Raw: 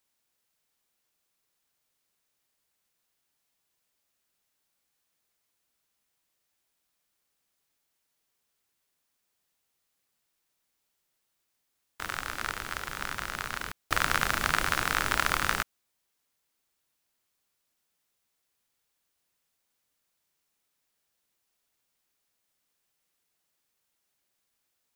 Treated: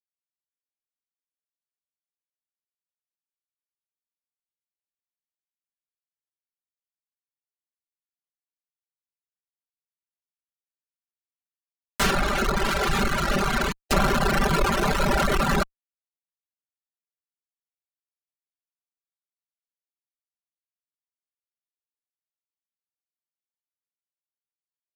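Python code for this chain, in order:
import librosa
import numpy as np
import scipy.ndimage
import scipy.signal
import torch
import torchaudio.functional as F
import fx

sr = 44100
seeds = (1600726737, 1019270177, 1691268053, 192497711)

y = fx.env_lowpass_down(x, sr, base_hz=1400.0, full_db=-29.5)
y = fx.fuzz(y, sr, gain_db=47.0, gate_db=-55.0)
y = y + 0.98 * np.pad(y, (int(5.1 * sr / 1000.0), 0))[:len(y)]
y = fx.dereverb_blind(y, sr, rt60_s=1.6)
y = F.gain(torch.from_numpy(y), -6.5).numpy()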